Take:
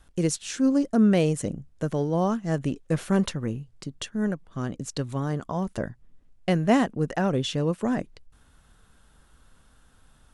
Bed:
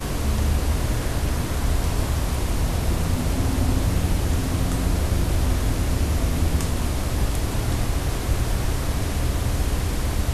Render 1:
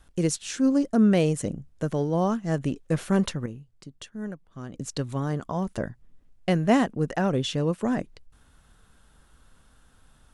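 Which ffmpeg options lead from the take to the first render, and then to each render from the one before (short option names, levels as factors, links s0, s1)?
-filter_complex "[0:a]asplit=3[s0][s1][s2];[s0]atrim=end=3.462[s3];[s1]atrim=start=3.458:end=4.742,asetpts=PTS-STARTPTS,volume=0.398[s4];[s2]atrim=start=4.738[s5];[s3][s4]acrossfade=d=0.004:c1=hsin:c2=hsin[s6];[s6][s5]acrossfade=d=0.004:c1=hsin:c2=hsin"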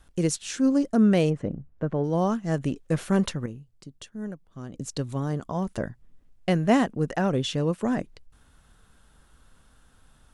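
-filter_complex "[0:a]asplit=3[s0][s1][s2];[s0]afade=t=out:st=1.29:d=0.02[s3];[s1]lowpass=1700,afade=t=in:st=1.29:d=0.02,afade=t=out:st=2.03:d=0.02[s4];[s2]afade=t=in:st=2.03:d=0.02[s5];[s3][s4][s5]amix=inputs=3:normalize=0,asettb=1/sr,asplit=3[s6][s7][s8];[s6]atrim=end=3.524[s9];[s7]atrim=start=3.52:end=5.55,asetpts=PTS-STARTPTS,afade=t=in:d=0.004:c=qsin,afade=t=out:st=2.026:d=0.004:c=qsin,equalizer=f=1700:t=o:w=1.9:g=-3.5[s10];[s8]atrim=start=5.546[s11];[s9][s10]acrossfade=d=0.004:c1=hsin:c2=qsin[s12];[s12][s11]acrossfade=d=0.004:c1=qsin:c2=hsin"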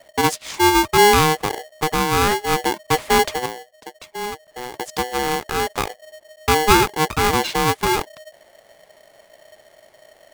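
-filter_complex "[0:a]asplit=2[s0][s1];[s1]adynamicsmooth=sensitivity=2.5:basefreq=4500,volume=1.06[s2];[s0][s2]amix=inputs=2:normalize=0,aeval=exprs='val(0)*sgn(sin(2*PI*620*n/s))':c=same"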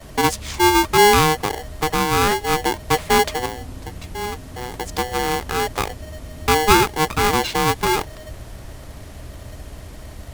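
-filter_complex "[1:a]volume=0.211[s0];[0:a][s0]amix=inputs=2:normalize=0"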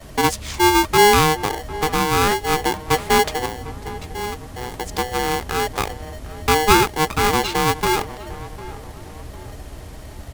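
-filter_complex "[0:a]asplit=2[s0][s1];[s1]adelay=752,lowpass=f=1800:p=1,volume=0.15,asplit=2[s2][s3];[s3]adelay=752,lowpass=f=1800:p=1,volume=0.47,asplit=2[s4][s5];[s5]adelay=752,lowpass=f=1800:p=1,volume=0.47,asplit=2[s6][s7];[s7]adelay=752,lowpass=f=1800:p=1,volume=0.47[s8];[s0][s2][s4][s6][s8]amix=inputs=5:normalize=0"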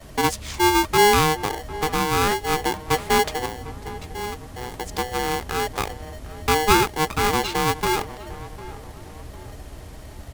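-af "volume=0.708"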